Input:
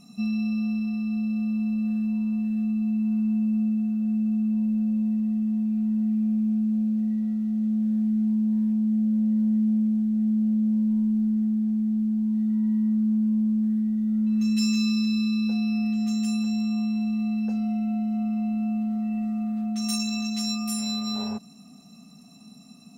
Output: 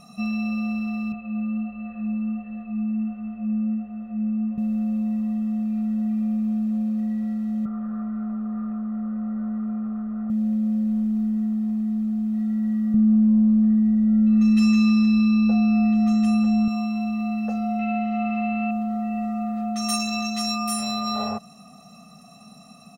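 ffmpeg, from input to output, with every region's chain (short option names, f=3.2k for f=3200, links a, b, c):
-filter_complex "[0:a]asettb=1/sr,asplit=3[a][b][c];[a]atrim=end=1.124[d];[b]atrim=start=1.12:end=4.58,asetpts=PTS-STARTPTS,afade=t=in:d=0.004:c=qsin,afade=t=out:st=3.456:d=0.004:c=qsin,lowpass=f=2.7k:w=0.5412,lowpass=f=2.7k:w=1.3066,flanger=delay=15.5:depth=3.5:speed=1.4[e];[c]atrim=start=4.576[f];[d][e]acrossfade=d=0.004:c1=hsin:c2=qsin[g];[g][f]acrossfade=d=0.004:c1=qsin:c2=hsin,asettb=1/sr,asplit=3[h][i][j];[h]atrim=end=7.654[k];[i]atrim=start=7.65:end=10.3,asetpts=PTS-STARTPTS,afade=t=in:d=0.004:c=qsin,afade=t=out:st=2.646:d=0.004:c=qsin,lowpass=f=1.3k:t=q:w=5,aecho=1:1:6.6:0.61,atrim=end_sample=116865[l];[j]atrim=start=10.296[m];[k][l]acrossfade=d=0.004:c1=hsin:c2=qsin[n];[n][m]acrossfade=d=0.004:c1=qsin:c2=hsin,asettb=1/sr,asplit=3[o][p][q];[o]atrim=end=12.944[r];[p]atrim=start=12.94:end=16.68,asetpts=PTS-STARTPTS,afade=t=in:d=0.004:c=qsin,afade=t=out:st=3.736:d=0.004:c=qsin,lowpass=f=3.4k:p=1,lowshelf=f=320:g=9[s];[q]atrim=start=16.676[t];[r][s]acrossfade=d=0.004:c1=hsin:c2=qsin[u];[u][t]acrossfade=d=0.004:c1=qsin:c2=hsin,asettb=1/sr,asplit=3[v][w][x];[v]atrim=end=17.794[y];[w]atrim=start=17.79:end=18.71,asetpts=PTS-STARTPTS,afade=t=in:d=0.004:c=qsin,afade=t=out:st=0.916:d=0.004:c=qsin,lowpass=5.1k,equalizer=f=2.4k:t=o:w=1.4:g=13[z];[x]atrim=start=18.706[aa];[y][z]acrossfade=d=0.004:c1=hsin:c2=qsin[ab];[ab][aa]acrossfade=d=0.004:c1=qsin:c2=hsin,equalizer=f=1k:w=0.76:g=10,aecho=1:1:1.6:0.88"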